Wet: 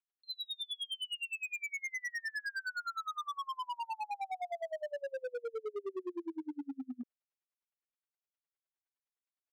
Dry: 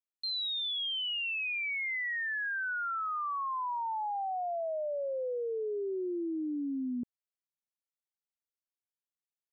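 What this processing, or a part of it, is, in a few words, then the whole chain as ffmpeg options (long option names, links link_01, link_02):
helicopter radio: -af "highpass=350,lowpass=3000,aeval=exprs='val(0)*pow(10,-36*(0.5-0.5*cos(2*PI*9.7*n/s))/20)':channel_layout=same,asoftclip=type=hard:threshold=-39.5dB,volume=5dB"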